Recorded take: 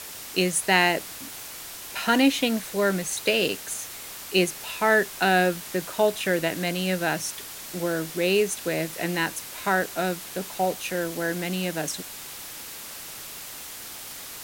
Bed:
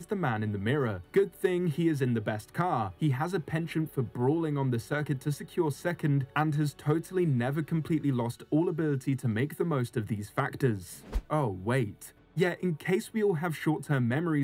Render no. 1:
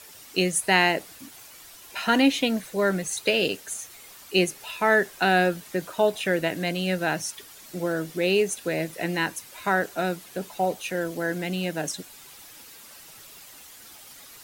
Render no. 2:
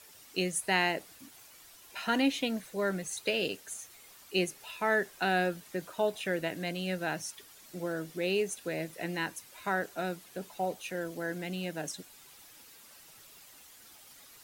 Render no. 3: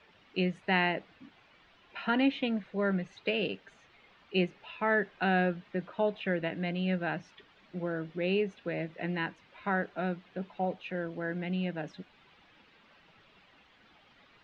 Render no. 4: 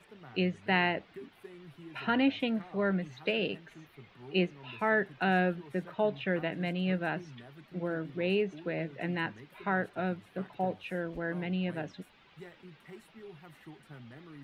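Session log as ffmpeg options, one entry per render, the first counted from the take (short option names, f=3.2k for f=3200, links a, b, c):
-af "afftdn=nr=10:nf=-39"
-af "volume=-8dB"
-af "lowpass=f=3.2k:w=0.5412,lowpass=f=3.2k:w=1.3066,equalizer=f=190:t=o:w=0.43:g=6"
-filter_complex "[1:a]volume=-22dB[a];[0:a][a]amix=inputs=2:normalize=0"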